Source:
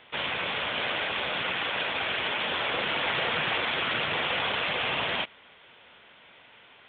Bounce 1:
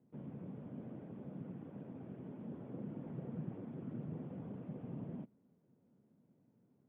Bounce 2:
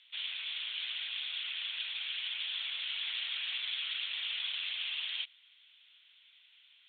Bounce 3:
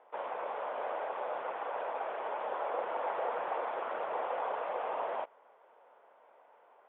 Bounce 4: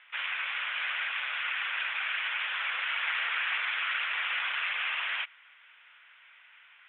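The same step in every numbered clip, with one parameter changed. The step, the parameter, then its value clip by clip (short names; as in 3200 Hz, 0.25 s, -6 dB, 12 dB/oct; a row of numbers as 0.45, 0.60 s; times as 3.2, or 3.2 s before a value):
Butterworth band-pass, frequency: 180, 5000, 690, 1900 Hz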